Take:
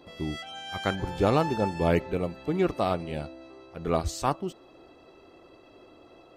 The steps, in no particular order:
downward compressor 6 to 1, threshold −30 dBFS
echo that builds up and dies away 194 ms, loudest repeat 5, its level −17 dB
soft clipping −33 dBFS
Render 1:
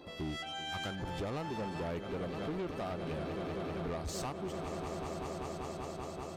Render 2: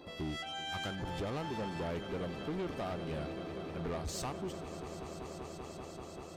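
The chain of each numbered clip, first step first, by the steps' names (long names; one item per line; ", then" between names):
echo that builds up and dies away, then downward compressor, then soft clipping
downward compressor, then echo that builds up and dies away, then soft clipping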